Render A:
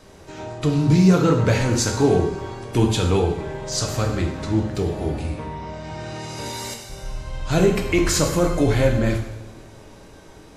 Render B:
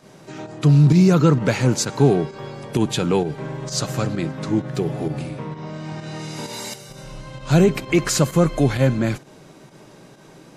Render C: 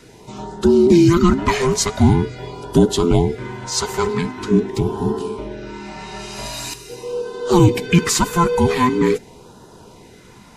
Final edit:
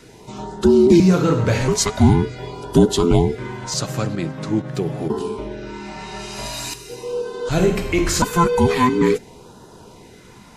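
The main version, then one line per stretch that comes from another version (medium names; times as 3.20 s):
C
1.00–1.68 s: from A
3.74–5.10 s: from B
7.49–8.22 s: from A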